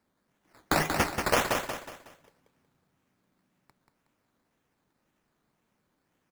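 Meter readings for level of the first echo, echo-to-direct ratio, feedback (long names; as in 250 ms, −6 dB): −5.5 dB, −5.0 dB, 37%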